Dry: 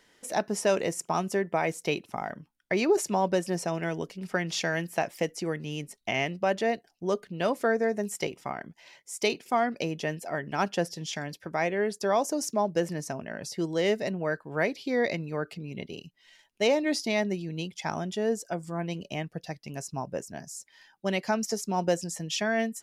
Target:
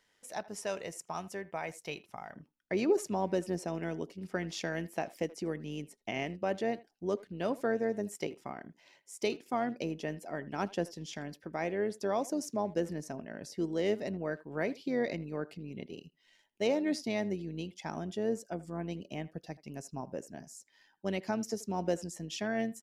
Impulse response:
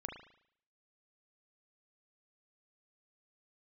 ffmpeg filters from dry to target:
-filter_complex "[0:a]asetnsamples=nb_out_samples=441:pad=0,asendcmd='2.34 equalizer g 7',equalizer=frequency=290:width=0.83:gain=-5.5,asplit=2[link_01][link_02];[link_02]adelay=80,highpass=300,lowpass=3400,asoftclip=type=hard:threshold=-17.5dB,volume=-19dB[link_03];[link_01][link_03]amix=inputs=2:normalize=0,tremolo=f=99:d=0.333,volume=-8dB"

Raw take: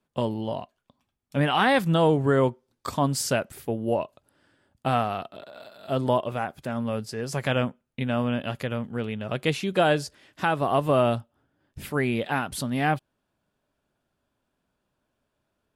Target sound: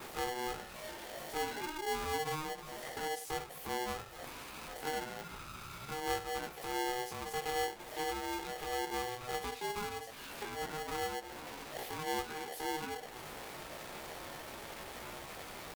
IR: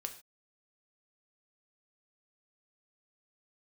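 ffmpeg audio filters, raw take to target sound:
-filter_complex "[0:a]aeval=exprs='val(0)+0.5*0.0335*sgn(val(0))':channel_layout=same,adynamicequalizer=threshold=0.00447:dfrequency=5000:dqfactor=1.4:tfrequency=5000:tqfactor=1.4:attack=5:release=100:ratio=0.375:range=3.5:mode=cutabove:tftype=bell,acrossover=split=210[link_01][link_02];[link_02]acompressor=threshold=-35dB:ratio=8[link_03];[link_01][link_03]amix=inputs=2:normalize=0,flanger=delay=16:depth=6.9:speed=0.32,asetrate=50951,aresample=44100,atempo=0.865537[link_04];[1:a]atrim=start_sample=2205,atrim=end_sample=4410[link_05];[link_04][link_05]afir=irnorm=-1:irlink=0,aeval=exprs='val(0)*sgn(sin(2*PI*620*n/s))':channel_layout=same,volume=-4dB"

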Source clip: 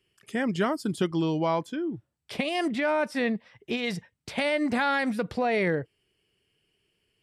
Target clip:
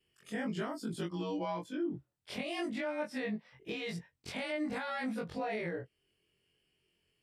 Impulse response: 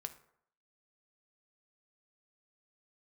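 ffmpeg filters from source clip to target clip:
-af "afftfilt=real='re':imag='-im':win_size=2048:overlap=0.75,alimiter=level_in=4dB:limit=-24dB:level=0:latency=1:release=360,volume=-4dB"

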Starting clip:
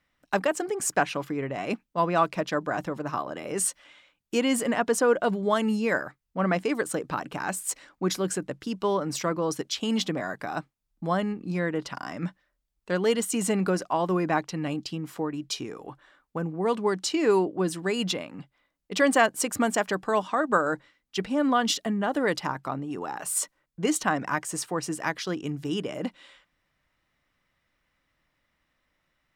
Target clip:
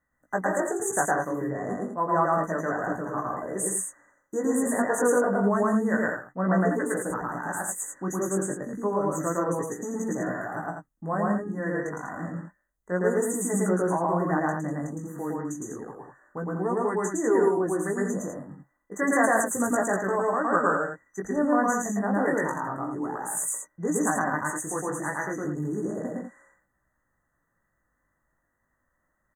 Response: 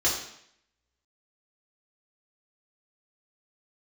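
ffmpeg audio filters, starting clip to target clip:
-af "flanger=delay=16:depth=4.5:speed=0.3,afftfilt=real='re*(1-between(b*sr/4096,2000,6000))':imag='im*(1-between(b*sr/4096,2000,6000))':win_size=4096:overlap=0.75,aecho=1:1:110.8|151.6|195.3:1|0.355|0.501"

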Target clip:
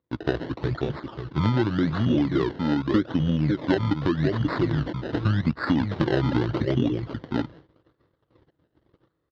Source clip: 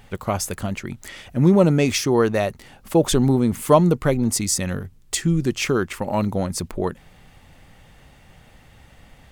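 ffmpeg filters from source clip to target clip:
ffmpeg -i in.wav -filter_complex "[0:a]acrusher=bits=4:mode=log:mix=0:aa=0.000001,asplit=2[link_01][link_02];[link_02]aecho=0:1:537:0.447[link_03];[link_01][link_03]amix=inputs=2:normalize=0,dynaudnorm=framelen=100:gausssize=13:maxgain=7dB,equalizer=frequency=4500:width=0.66:gain=-11,acrusher=samples=17:mix=1:aa=0.000001:lfo=1:lforange=17:lforate=0.84,highpass=frequency=120:width=0.5412,highpass=frequency=120:width=1.3066,equalizer=frequency=140:width_type=q:width=4:gain=-10,equalizer=frequency=320:width_type=q:width=4:gain=-4,equalizer=frequency=500:width_type=q:width=4:gain=6,equalizer=frequency=1200:width_type=q:width=4:gain=-5,equalizer=frequency=3900:width_type=q:width=4:gain=-10,lowpass=frequency=6400:width=0.5412,lowpass=frequency=6400:width=1.3066,asetrate=27781,aresample=44100,atempo=1.5874,acompressor=threshold=-18dB:ratio=10,agate=range=-27dB:threshold=-44dB:ratio=16:detection=peak" out.wav

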